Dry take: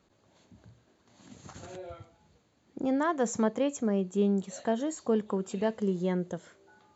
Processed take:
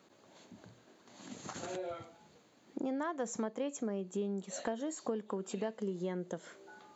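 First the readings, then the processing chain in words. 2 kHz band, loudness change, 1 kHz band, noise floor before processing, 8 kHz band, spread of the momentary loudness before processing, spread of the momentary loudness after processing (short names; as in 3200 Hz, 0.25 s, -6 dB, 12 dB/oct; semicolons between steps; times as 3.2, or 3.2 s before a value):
-6.5 dB, -9.0 dB, -7.5 dB, -68 dBFS, n/a, 16 LU, 19 LU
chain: HPF 200 Hz 12 dB/oct; compressor 4:1, threshold -41 dBFS, peak gain reduction 16.5 dB; gain +5 dB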